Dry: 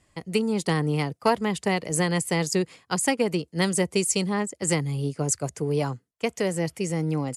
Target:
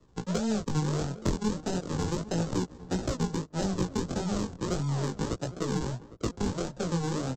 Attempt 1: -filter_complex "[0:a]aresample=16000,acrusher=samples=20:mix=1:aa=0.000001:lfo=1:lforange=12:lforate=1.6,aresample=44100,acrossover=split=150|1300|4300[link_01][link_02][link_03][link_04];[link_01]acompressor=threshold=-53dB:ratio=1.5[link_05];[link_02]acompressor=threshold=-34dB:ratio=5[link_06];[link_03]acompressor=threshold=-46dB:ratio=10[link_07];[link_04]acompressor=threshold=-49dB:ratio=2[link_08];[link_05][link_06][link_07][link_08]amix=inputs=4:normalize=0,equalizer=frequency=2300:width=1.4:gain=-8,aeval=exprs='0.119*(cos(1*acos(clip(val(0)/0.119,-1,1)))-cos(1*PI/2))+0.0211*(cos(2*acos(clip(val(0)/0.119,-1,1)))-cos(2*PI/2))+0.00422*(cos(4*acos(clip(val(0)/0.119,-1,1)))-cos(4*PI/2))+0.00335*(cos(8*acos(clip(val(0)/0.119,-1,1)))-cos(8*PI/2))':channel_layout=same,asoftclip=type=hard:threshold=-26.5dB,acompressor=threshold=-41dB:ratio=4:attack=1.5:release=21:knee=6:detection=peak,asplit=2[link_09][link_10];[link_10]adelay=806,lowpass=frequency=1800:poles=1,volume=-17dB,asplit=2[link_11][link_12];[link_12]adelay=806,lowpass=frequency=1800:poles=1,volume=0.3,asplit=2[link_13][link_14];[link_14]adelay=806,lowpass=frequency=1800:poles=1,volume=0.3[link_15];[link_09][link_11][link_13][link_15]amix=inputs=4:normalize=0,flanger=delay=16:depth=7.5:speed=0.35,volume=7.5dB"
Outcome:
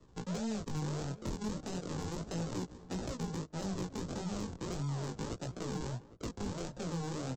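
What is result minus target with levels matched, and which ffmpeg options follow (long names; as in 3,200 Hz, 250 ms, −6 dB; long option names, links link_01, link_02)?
hard clipping: distortion +31 dB; downward compressor: peak gain reduction +11 dB
-filter_complex "[0:a]aresample=16000,acrusher=samples=20:mix=1:aa=0.000001:lfo=1:lforange=12:lforate=1.6,aresample=44100,acrossover=split=150|1300|4300[link_01][link_02][link_03][link_04];[link_01]acompressor=threshold=-53dB:ratio=1.5[link_05];[link_02]acompressor=threshold=-34dB:ratio=5[link_06];[link_03]acompressor=threshold=-46dB:ratio=10[link_07];[link_04]acompressor=threshold=-49dB:ratio=2[link_08];[link_05][link_06][link_07][link_08]amix=inputs=4:normalize=0,equalizer=frequency=2300:width=1.4:gain=-8,aeval=exprs='0.119*(cos(1*acos(clip(val(0)/0.119,-1,1)))-cos(1*PI/2))+0.0211*(cos(2*acos(clip(val(0)/0.119,-1,1)))-cos(2*PI/2))+0.00422*(cos(4*acos(clip(val(0)/0.119,-1,1)))-cos(4*PI/2))+0.00335*(cos(8*acos(clip(val(0)/0.119,-1,1)))-cos(8*PI/2))':channel_layout=same,asoftclip=type=hard:threshold=-19dB,asplit=2[link_09][link_10];[link_10]adelay=806,lowpass=frequency=1800:poles=1,volume=-17dB,asplit=2[link_11][link_12];[link_12]adelay=806,lowpass=frequency=1800:poles=1,volume=0.3,asplit=2[link_13][link_14];[link_14]adelay=806,lowpass=frequency=1800:poles=1,volume=0.3[link_15];[link_09][link_11][link_13][link_15]amix=inputs=4:normalize=0,flanger=delay=16:depth=7.5:speed=0.35,volume=7.5dB"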